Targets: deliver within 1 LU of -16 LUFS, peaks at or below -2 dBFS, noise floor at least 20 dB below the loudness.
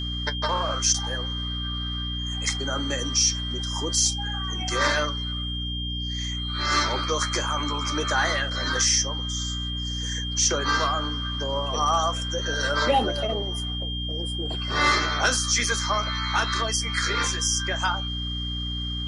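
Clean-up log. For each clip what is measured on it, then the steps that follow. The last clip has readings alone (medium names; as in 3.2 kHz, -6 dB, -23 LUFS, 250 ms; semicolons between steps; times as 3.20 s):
hum 60 Hz; highest harmonic 300 Hz; hum level -29 dBFS; steady tone 3.2 kHz; tone level -31 dBFS; loudness -24.5 LUFS; peak level -9.0 dBFS; loudness target -16.0 LUFS
-> hum notches 60/120/180/240/300 Hz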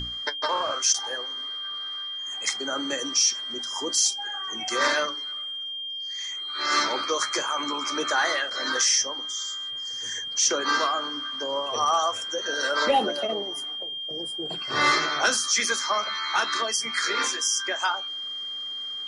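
hum not found; steady tone 3.2 kHz; tone level -31 dBFS
-> band-stop 3.2 kHz, Q 30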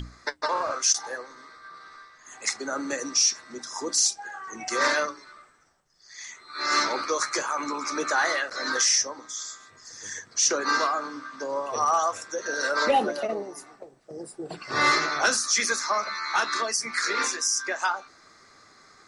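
steady tone not found; loudness -25.0 LUFS; peak level -10.0 dBFS; loudness target -16.0 LUFS
-> trim +9 dB; peak limiter -2 dBFS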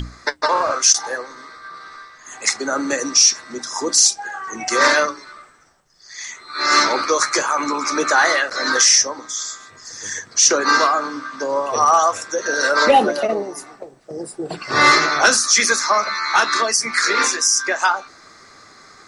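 loudness -16.0 LUFS; peak level -2.0 dBFS; noise floor -47 dBFS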